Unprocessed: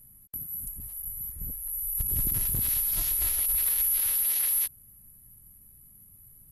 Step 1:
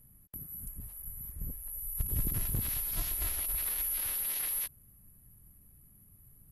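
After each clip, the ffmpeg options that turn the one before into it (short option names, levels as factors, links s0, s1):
-af "highshelf=f=3400:g=-8.5"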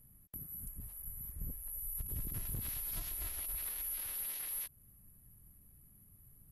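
-af "alimiter=level_in=1.5:limit=0.0631:level=0:latency=1:release=215,volume=0.668,volume=0.75"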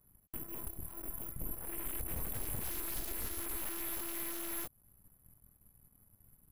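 -af "aeval=exprs='0.0335*(cos(1*acos(clip(val(0)/0.0335,-1,1)))-cos(1*PI/2))+0.0015*(cos(7*acos(clip(val(0)/0.0335,-1,1)))-cos(7*PI/2))+0.0119*(cos(8*acos(clip(val(0)/0.0335,-1,1)))-cos(8*PI/2))':c=same,volume=0.75"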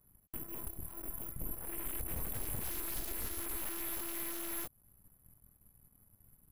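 -af anull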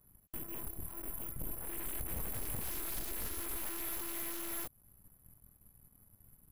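-af "asoftclip=type=hard:threshold=0.0168,volume=1.26"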